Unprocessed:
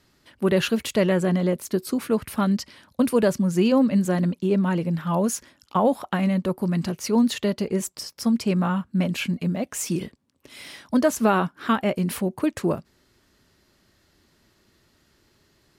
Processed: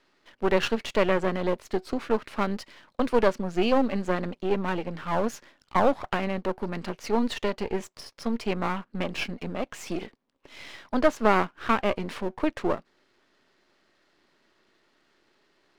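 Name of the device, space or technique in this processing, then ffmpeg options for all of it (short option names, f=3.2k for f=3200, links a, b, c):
crystal radio: -af "highpass=330,lowpass=3.5k,aeval=exprs='if(lt(val(0),0),0.251*val(0),val(0))':c=same,volume=3dB"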